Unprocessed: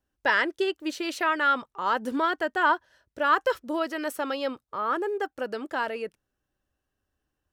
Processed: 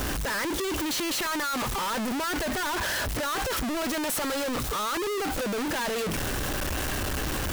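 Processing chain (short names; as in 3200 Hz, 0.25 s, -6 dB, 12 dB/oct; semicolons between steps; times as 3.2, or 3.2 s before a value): infinite clipping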